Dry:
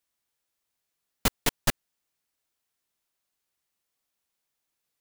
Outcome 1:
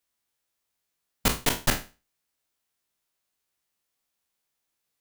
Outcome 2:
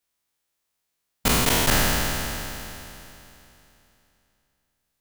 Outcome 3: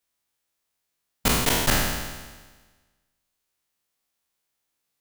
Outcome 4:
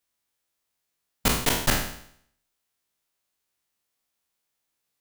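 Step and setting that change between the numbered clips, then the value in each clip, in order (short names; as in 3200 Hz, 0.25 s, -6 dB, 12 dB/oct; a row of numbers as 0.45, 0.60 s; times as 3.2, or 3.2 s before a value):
spectral trails, RT60: 0.31, 3.03, 1.37, 0.65 s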